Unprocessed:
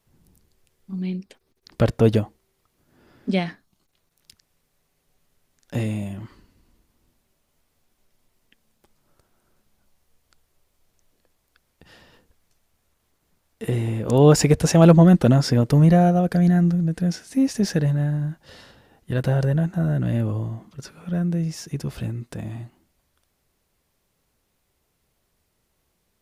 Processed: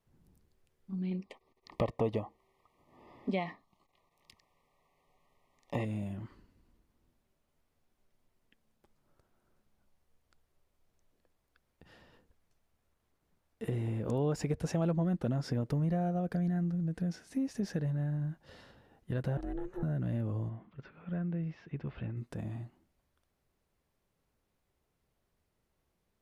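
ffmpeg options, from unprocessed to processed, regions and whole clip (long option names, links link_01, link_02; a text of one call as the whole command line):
ffmpeg -i in.wav -filter_complex "[0:a]asettb=1/sr,asplit=3[link_01][link_02][link_03];[link_01]atrim=end=1.114[link_04];[link_02]atrim=start=1.11:end=5.85,asetpts=PTS-STARTPTS,afade=type=in:duration=0.004:curve=qsin,afade=type=out:start_time=4.736:duration=0.004:curve=qsin,asuperstop=centerf=1500:order=12:qfactor=2.5,equalizer=frequency=1200:width_type=o:width=2.4:gain=15[link_05];[link_03]atrim=start=5.846[link_06];[link_04][link_05]acrossfade=duration=0.004:curve1=hsin:curve2=qsin[link_07];[link_07][link_06]acrossfade=duration=0.004:curve1=qsin:curve2=hsin,asettb=1/sr,asplit=3[link_08][link_09][link_10];[link_08]atrim=end=19.374[link_11];[link_09]atrim=start=19.37:end=19.83,asetpts=PTS-STARTPTS,afade=type=in:duration=0.004:curve=qsin,afade=type=out:start_time=0.456:duration=0.004:curve=qsin,acompressor=threshold=-28dB:ratio=2:attack=3.2:release=140:knee=1:detection=peak,aeval=exprs='val(0)*sin(2*PI*180*n/s)':channel_layout=same[link_12];[link_10]atrim=start=19.826[link_13];[link_11][link_12]acrossfade=duration=0.004:curve1=hsin:curve2=qsin[link_14];[link_14][link_13]acrossfade=duration=0.004:curve1=qsin:curve2=hsin,asettb=1/sr,asplit=3[link_15][link_16][link_17];[link_15]atrim=end=20.494[link_18];[link_16]atrim=start=20.49:end=22.17,asetpts=PTS-STARTPTS,afade=type=in:duration=0.004:curve=qsin,afade=type=out:start_time=1.676:duration=0.004:curve=qsin,lowpass=frequency=2900:width=0.5412,lowpass=frequency=2900:width=1.3066,tiltshelf=frequency=1300:gain=-3.5[link_19];[link_17]atrim=start=22.166[link_20];[link_18][link_19]acrossfade=duration=0.004:curve1=hsin:curve2=qsin[link_21];[link_21][link_20]acrossfade=duration=0.004:curve1=qsin:curve2=hsin,highshelf=frequency=2900:gain=-8.5,acompressor=threshold=-25dB:ratio=3,volume=-7dB" out.wav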